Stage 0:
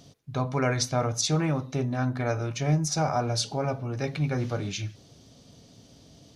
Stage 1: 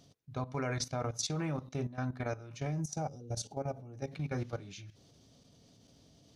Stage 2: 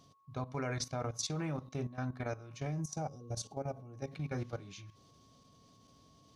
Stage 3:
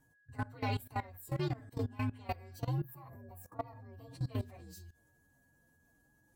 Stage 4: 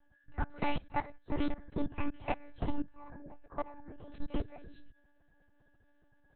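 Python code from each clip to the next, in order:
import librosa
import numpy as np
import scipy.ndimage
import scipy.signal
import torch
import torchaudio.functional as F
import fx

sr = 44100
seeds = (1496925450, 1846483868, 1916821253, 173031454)

y1 = fx.spec_box(x, sr, start_s=3.08, length_s=0.24, low_hz=560.0, high_hz=2700.0, gain_db=-22)
y1 = fx.level_steps(y1, sr, step_db=14)
y1 = fx.spec_box(y1, sr, start_s=2.81, length_s=1.3, low_hz=920.0, high_hz=5500.0, gain_db=-7)
y1 = y1 * 10.0 ** (-6.0 / 20.0)
y2 = y1 + 10.0 ** (-65.0 / 20.0) * np.sin(2.0 * np.pi * 1100.0 * np.arange(len(y1)) / sr)
y2 = y2 * 10.0 ** (-2.0 / 20.0)
y3 = fx.partial_stretch(y2, sr, pct=128)
y3 = fx.level_steps(y3, sr, step_db=19)
y3 = np.clip(10.0 ** (32.0 / 20.0) * y3, -1.0, 1.0) / 10.0 ** (32.0 / 20.0)
y3 = y3 * 10.0 ** (5.5 / 20.0)
y4 = fx.lpc_monotone(y3, sr, seeds[0], pitch_hz=290.0, order=10)
y4 = y4 * 10.0 ** (4.5 / 20.0)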